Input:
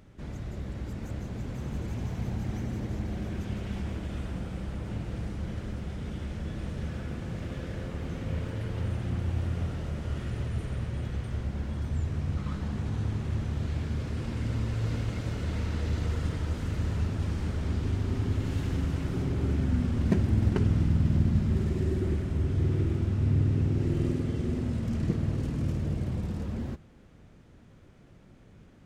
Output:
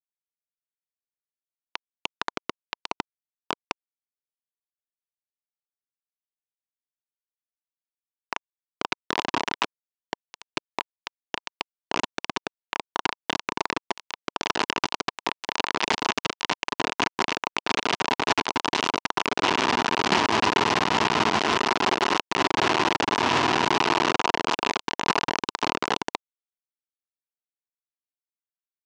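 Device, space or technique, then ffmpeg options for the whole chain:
hand-held game console: -af "acrusher=bits=3:mix=0:aa=0.000001,highpass=410,equalizer=f=540:t=q:w=4:g=-10,equalizer=f=970:t=q:w=4:g=7,equalizer=f=2.8k:t=q:w=4:g=4,lowpass=f=5.9k:w=0.5412,lowpass=f=5.9k:w=1.3066,volume=8dB"

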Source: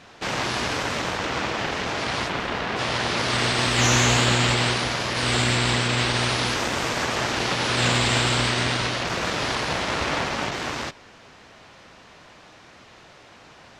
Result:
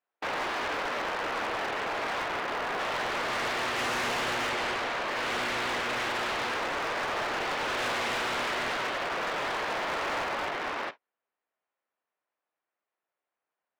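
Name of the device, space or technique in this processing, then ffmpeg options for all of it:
walkie-talkie: -filter_complex "[0:a]highpass=440,lowpass=2.2k,asoftclip=type=hard:threshold=-28dB,agate=range=-39dB:threshold=-39dB:ratio=16:detection=peak,asettb=1/sr,asplit=3[a][b][c];[a]atrim=end=4.494[d];[b]atrim=start=4.49:end=5.08,asetpts=PTS-STARTPTS,afade=t=in:d=0.004:c=qsin,afade=t=out:st=0.586:d=0.004:c=qsin,highshelf=f=9.3k:g=-5.5[e];[c]atrim=start=5.076[f];[d][e]acrossfade=d=0.004:c1=hsin:c2=qsin[g];[g][f]acrossfade=d=0.004:c1=qsin:c2=hsin"

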